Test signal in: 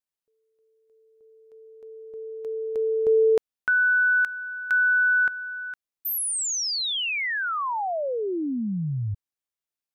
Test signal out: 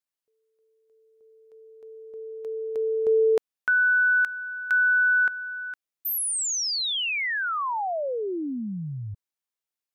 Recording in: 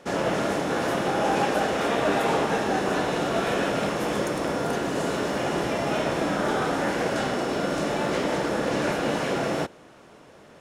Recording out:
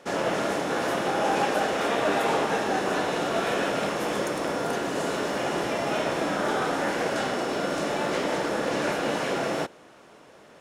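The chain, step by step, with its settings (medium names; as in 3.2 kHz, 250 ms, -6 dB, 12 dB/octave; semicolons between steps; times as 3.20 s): bass shelf 190 Hz -8.5 dB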